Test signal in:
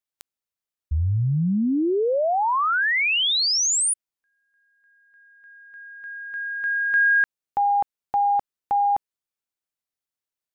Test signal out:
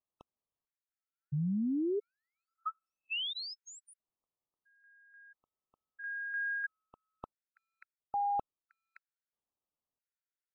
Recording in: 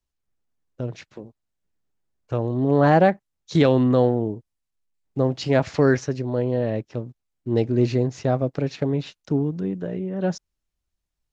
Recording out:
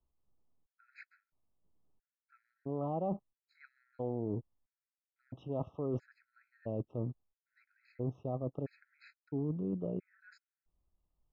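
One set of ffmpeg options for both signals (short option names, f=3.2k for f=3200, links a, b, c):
-af "lowpass=1.3k,areverse,acompressor=threshold=-32dB:ratio=12:attack=4.2:release=251:knee=6:detection=rms,areverse,afftfilt=real='re*gt(sin(2*PI*0.75*pts/sr)*(1-2*mod(floor(b*sr/1024/1300),2)),0)':imag='im*gt(sin(2*PI*0.75*pts/sr)*(1-2*mod(floor(b*sr/1024/1300),2)),0)':win_size=1024:overlap=0.75,volume=2dB"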